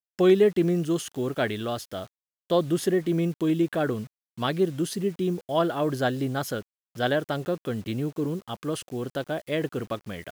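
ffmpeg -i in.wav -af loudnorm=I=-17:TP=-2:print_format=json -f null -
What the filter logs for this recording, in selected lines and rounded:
"input_i" : "-27.6",
"input_tp" : "-9.2",
"input_lra" : "6.2",
"input_thresh" : "-37.7",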